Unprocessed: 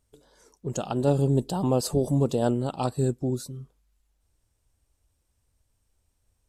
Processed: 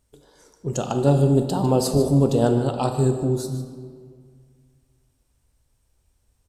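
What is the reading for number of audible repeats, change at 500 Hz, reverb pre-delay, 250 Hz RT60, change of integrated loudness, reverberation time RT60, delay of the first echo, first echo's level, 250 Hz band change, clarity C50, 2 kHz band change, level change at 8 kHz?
1, +5.0 dB, 7 ms, 2.2 s, +5.0 dB, 2.0 s, 0.15 s, -13.0 dB, +5.5 dB, 6.5 dB, +5.0 dB, +4.0 dB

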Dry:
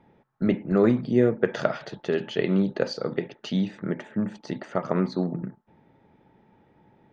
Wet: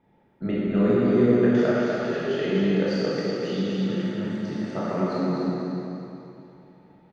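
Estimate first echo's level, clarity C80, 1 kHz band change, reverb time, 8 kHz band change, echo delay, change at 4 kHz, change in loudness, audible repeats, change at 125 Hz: -3.0 dB, -4.5 dB, +2.0 dB, 2.8 s, n/a, 0.248 s, +2.0 dB, +2.0 dB, 1, +1.5 dB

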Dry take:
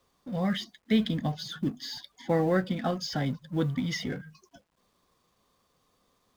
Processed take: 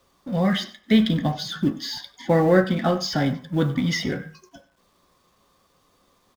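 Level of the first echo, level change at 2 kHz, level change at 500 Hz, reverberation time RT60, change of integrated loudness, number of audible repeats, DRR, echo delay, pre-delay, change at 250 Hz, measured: -18.0 dB, +8.5 dB, +8.0 dB, 0.45 s, +7.5 dB, 1, 5.5 dB, 96 ms, 3 ms, +7.5 dB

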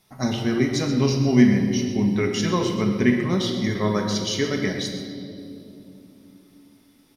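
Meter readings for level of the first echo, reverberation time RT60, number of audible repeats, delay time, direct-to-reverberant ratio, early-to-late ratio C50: -12.0 dB, 2.9 s, 1, 0.128 s, 1.5 dB, 4.5 dB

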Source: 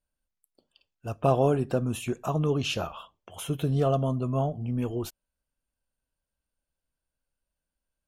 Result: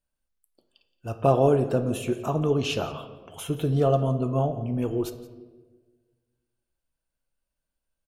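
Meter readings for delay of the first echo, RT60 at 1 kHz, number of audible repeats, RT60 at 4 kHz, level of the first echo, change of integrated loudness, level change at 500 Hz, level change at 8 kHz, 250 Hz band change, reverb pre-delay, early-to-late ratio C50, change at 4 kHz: 0.172 s, 1.1 s, 1, 0.75 s, -20.0 dB, +2.5 dB, +4.0 dB, 0.0 dB, +2.5 dB, 3 ms, 11.0 dB, +0.5 dB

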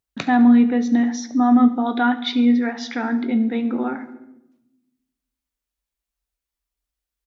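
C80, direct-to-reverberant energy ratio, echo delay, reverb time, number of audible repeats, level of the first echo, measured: 15.5 dB, 8.5 dB, 70 ms, 0.90 s, 4, -18.5 dB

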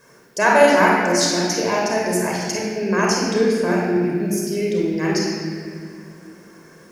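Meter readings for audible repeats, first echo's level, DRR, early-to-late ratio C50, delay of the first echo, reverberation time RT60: none, none, -3.0 dB, -1.0 dB, none, 2.3 s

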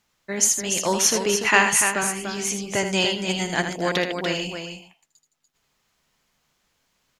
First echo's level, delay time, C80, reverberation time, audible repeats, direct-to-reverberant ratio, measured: -8.0 dB, 79 ms, none, none, 3, none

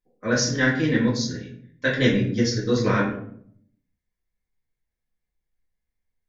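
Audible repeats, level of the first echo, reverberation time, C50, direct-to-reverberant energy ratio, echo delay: none, none, 0.65 s, 5.5 dB, -6.5 dB, none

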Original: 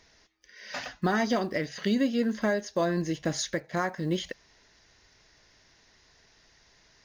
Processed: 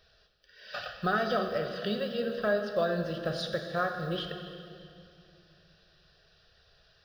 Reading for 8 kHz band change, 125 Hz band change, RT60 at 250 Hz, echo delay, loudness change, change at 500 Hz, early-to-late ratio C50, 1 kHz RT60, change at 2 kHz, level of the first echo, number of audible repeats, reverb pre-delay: under -15 dB, -3.5 dB, 3.2 s, none, -2.5 dB, 0.0 dB, 6.0 dB, 2.3 s, -1.0 dB, none, none, 19 ms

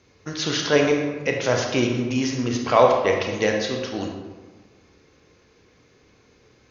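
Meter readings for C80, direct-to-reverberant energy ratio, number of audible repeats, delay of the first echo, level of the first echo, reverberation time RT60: 5.5 dB, 1.0 dB, none, none, none, 1.4 s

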